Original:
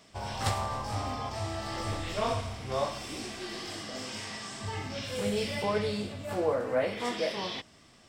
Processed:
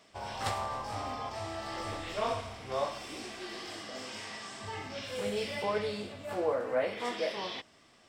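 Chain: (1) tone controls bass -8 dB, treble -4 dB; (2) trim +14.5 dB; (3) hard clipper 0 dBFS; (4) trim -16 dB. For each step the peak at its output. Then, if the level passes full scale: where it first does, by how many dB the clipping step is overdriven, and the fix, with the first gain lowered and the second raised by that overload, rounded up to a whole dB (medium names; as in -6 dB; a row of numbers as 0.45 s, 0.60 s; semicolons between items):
-16.5 dBFS, -2.0 dBFS, -2.0 dBFS, -18.0 dBFS; nothing clips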